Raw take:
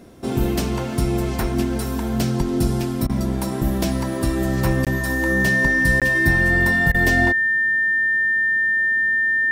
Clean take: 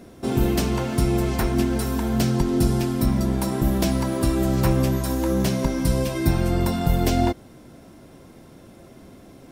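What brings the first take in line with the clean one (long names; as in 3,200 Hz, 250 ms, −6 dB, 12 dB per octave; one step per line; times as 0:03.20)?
notch filter 1,800 Hz, Q 30
repair the gap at 0:04.85/0:06.00, 17 ms
repair the gap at 0:03.07/0:06.92, 23 ms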